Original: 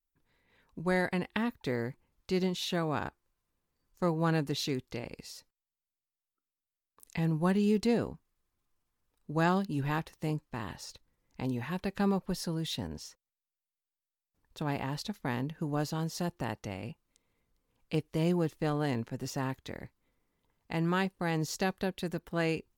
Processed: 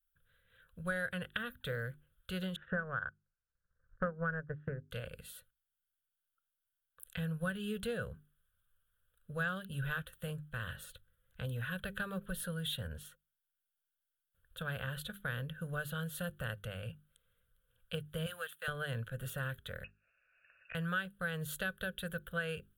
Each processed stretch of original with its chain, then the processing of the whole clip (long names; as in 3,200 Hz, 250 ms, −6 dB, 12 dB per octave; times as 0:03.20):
0:02.56–0:04.91: Chebyshev low-pass filter 1,800 Hz, order 5 + transient designer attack +10 dB, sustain −12 dB
0:18.26–0:18.68: high-pass filter 1,100 Hz + leveller curve on the samples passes 1
0:19.84–0:20.75: high-pass filter 72 Hz + voice inversion scrambler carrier 2,700 Hz + multiband upward and downward compressor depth 70%
whole clip: drawn EQ curve 110 Hz 0 dB, 190 Hz −8 dB, 320 Hz −27 dB, 520 Hz −1 dB, 880 Hz −23 dB, 1,500 Hz +10 dB, 2,100 Hz −13 dB, 3,300 Hz +5 dB, 5,200 Hz −26 dB, 9,800 Hz +3 dB; downward compressor 3 to 1, threshold −37 dBFS; mains-hum notches 50/100/150/200/250/300/350/400 Hz; level +2.5 dB